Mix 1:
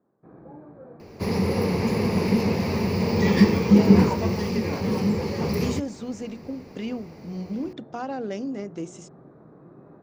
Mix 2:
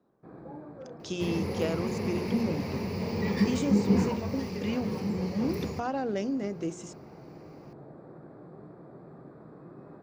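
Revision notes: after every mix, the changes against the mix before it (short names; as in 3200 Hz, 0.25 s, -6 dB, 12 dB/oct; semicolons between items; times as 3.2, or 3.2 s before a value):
speech: entry -2.15 s; first sound: remove air absorption 310 m; second sound -9.0 dB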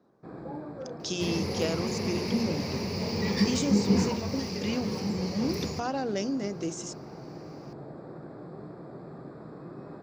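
first sound +5.0 dB; master: add bell 5300 Hz +10.5 dB 1.2 oct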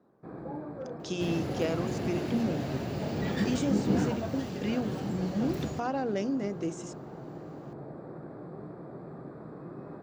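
second sound: remove ripple EQ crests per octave 0.86, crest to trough 12 dB; master: add bell 5300 Hz -10.5 dB 1.2 oct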